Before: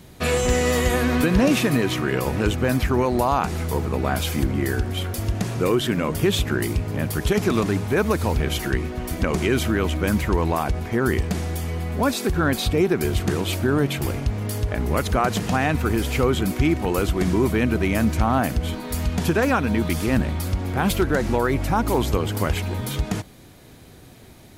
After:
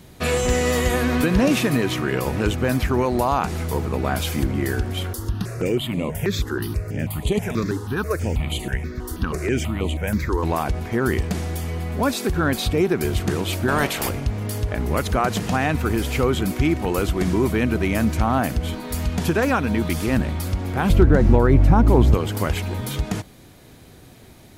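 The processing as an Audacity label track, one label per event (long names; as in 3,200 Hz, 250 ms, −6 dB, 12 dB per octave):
5.130000	10.430000	step-sequenced phaser 6.2 Hz 640–5,400 Hz
13.670000	14.080000	ceiling on every frequency bin ceiling under each frame's peak by 20 dB
20.890000	22.140000	spectral tilt −3 dB per octave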